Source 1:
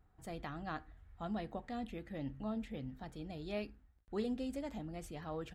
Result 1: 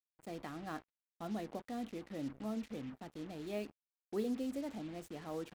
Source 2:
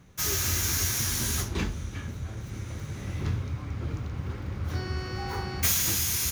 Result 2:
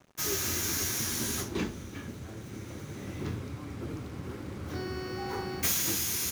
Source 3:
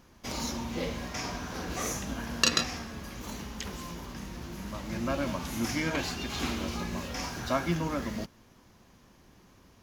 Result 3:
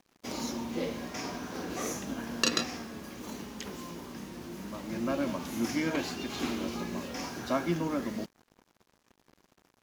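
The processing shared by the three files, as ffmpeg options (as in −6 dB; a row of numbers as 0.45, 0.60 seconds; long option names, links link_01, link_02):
-af "highpass=frequency=180:poles=1,equalizer=frequency=310:width_type=o:width=1.7:gain=7.5,acrusher=bits=7:mix=0:aa=0.5,volume=-3.5dB"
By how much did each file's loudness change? 0.0, −3.5, −1.5 LU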